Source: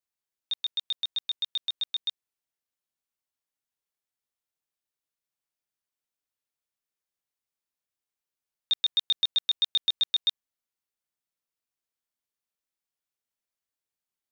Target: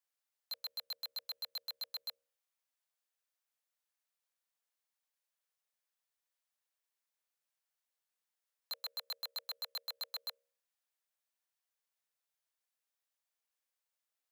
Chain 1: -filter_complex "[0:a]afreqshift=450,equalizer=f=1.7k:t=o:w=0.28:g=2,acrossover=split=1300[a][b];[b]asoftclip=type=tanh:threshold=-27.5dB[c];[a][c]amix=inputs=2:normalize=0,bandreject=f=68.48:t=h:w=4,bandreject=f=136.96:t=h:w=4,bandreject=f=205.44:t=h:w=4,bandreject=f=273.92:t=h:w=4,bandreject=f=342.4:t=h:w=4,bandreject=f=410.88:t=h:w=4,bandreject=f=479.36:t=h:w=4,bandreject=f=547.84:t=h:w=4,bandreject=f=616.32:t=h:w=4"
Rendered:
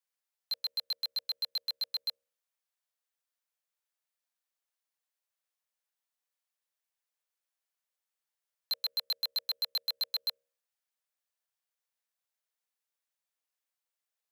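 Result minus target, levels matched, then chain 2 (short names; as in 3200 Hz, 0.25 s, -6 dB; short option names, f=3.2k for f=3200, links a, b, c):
soft clip: distortion -4 dB
-filter_complex "[0:a]afreqshift=450,equalizer=f=1.7k:t=o:w=0.28:g=2,acrossover=split=1300[a][b];[b]asoftclip=type=tanh:threshold=-38dB[c];[a][c]amix=inputs=2:normalize=0,bandreject=f=68.48:t=h:w=4,bandreject=f=136.96:t=h:w=4,bandreject=f=205.44:t=h:w=4,bandreject=f=273.92:t=h:w=4,bandreject=f=342.4:t=h:w=4,bandreject=f=410.88:t=h:w=4,bandreject=f=479.36:t=h:w=4,bandreject=f=547.84:t=h:w=4,bandreject=f=616.32:t=h:w=4"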